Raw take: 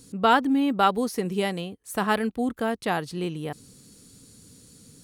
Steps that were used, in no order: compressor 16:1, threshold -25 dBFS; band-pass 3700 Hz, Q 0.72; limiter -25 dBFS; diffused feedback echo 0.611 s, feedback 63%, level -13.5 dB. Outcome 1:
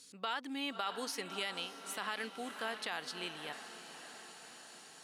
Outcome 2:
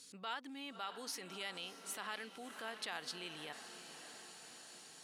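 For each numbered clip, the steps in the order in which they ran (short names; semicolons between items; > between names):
band-pass > compressor > diffused feedback echo > limiter; compressor > diffused feedback echo > limiter > band-pass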